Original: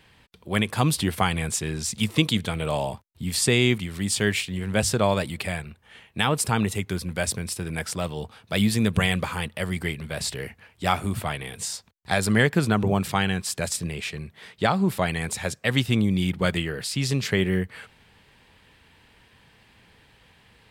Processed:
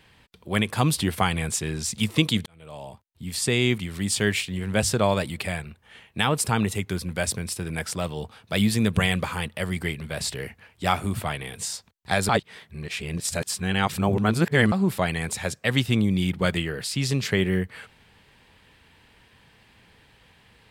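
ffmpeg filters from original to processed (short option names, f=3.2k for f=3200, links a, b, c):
-filter_complex "[0:a]asplit=4[a][b][c][d];[a]atrim=end=2.46,asetpts=PTS-STARTPTS,afade=t=out:st=2.456:d=0.004:c=hsin[e];[b]atrim=start=2.46:end=12.292,asetpts=PTS-STARTPTS,afade=t=in:d=1.44[f];[c]atrim=start=12.288:end=14.722,asetpts=PTS-STARTPTS,areverse[g];[d]atrim=start=14.718[h];[e][f]concat=n=2:v=0:a=1[i];[i][g]acrossfade=d=0.004:c1=hsin:c2=hsin[j];[j][h]acrossfade=d=0.004:c1=hsin:c2=hsin"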